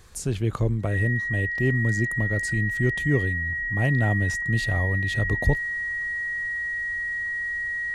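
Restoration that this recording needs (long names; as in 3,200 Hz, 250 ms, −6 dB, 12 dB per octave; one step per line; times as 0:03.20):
notch filter 1,900 Hz, Q 30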